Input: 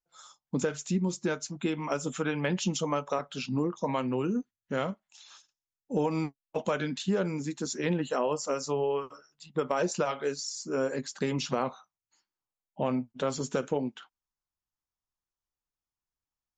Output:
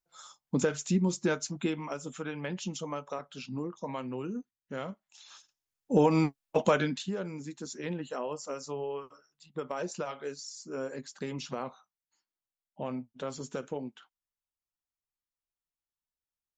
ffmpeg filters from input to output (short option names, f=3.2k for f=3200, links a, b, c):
-af "volume=13.5dB,afade=t=out:st=1.52:d=0.42:silence=0.375837,afade=t=in:st=4.84:d=1.11:silence=0.251189,afade=t=out:st=6.7:d=0.41:silence=0.251189"